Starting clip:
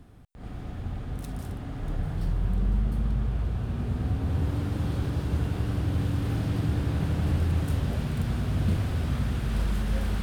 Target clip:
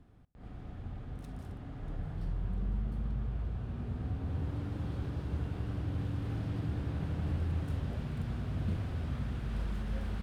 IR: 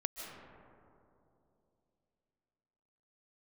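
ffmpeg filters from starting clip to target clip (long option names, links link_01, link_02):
-filter_complex "[0:a]lowpass=frequency=3600:poles=1,asplit=2[link_01][link_02];[link_02]adelay=73,lowpass=frequency=1700:poles=1,volume=-21.5dB,asplit=2[link_03][link_04];[link_04]adelay=73,lowpass=frequency=1700:poles=1,volume=0.47,asplit=2[link_05][link_06];[link_06]adelay=73,lowpass=frequency=1700:poles=1,volume=0.47[link_07];[link_01][link_03][link_05][link_07]amix=inputs=4:normalize=0,volume=-8.5dB"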